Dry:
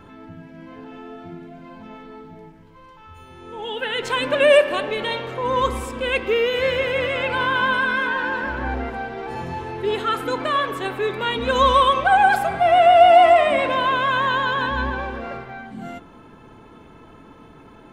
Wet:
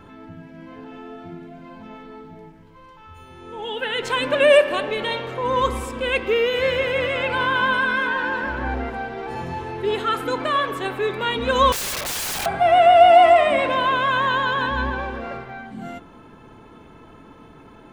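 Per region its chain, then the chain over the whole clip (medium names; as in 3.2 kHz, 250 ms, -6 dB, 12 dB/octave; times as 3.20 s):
11.72–12.46 s: bass shelf 180 Hz -6.5 dB + comb of notches 350 Hz + integer overflow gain 22 dB
whole clip: none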